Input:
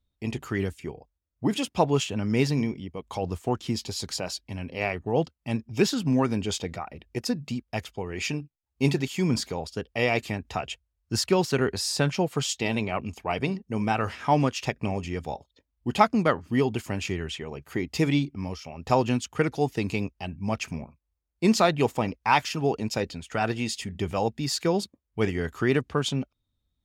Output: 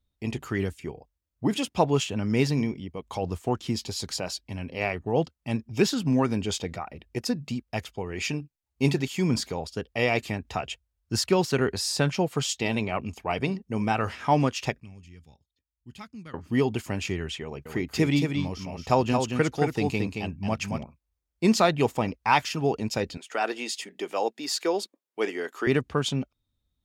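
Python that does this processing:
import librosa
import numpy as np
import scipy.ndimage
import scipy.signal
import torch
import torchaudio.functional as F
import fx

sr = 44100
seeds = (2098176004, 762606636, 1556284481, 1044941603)

y = fx.tone_stack(x, sr, knobs='6-0-2', at=(14.8, 16.34))
y = fx.echo_single(y, sr, ms=224, db=-5.0, at=(17.43, 20.83))
y = fx.highpass(y, sr, hz=310.0, slope=24, at=(23.17, 25.67))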